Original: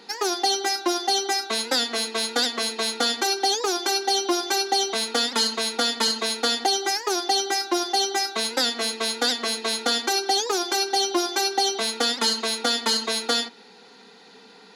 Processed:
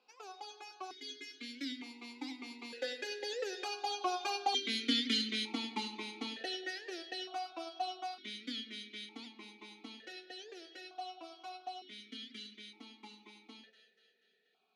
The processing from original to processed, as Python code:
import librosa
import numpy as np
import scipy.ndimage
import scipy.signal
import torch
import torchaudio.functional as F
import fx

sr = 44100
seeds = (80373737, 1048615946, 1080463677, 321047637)

y = fx.doppler_pass(x, sr, speed_mps=22, closest_m=24.0, pass_at_s=4.81)
y = fx.peak_eq(y, sr, hz=740.0, db=-10.0, octaves=1.8)
y = fx.echo_split(y, sr, split_hz=880.0, low_ms=96, high_ms=241, feedback_pct=52, wet_db=-15.0)
y = fx.vowel_held(y, sr, hz=1.1)
y = F.gain(torch.from_numpy(y), 7.5).numpy()